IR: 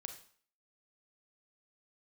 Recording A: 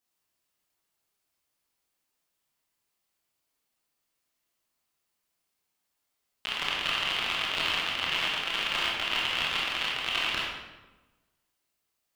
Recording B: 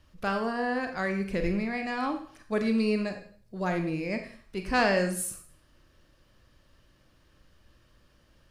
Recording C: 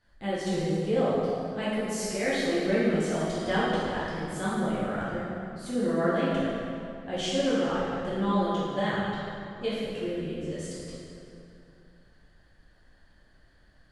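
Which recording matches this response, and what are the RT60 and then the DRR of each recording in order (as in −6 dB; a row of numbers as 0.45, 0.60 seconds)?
B; 1.2, 0.50, 2.6 seconds; −4.5, 5.5, −10.5 decibels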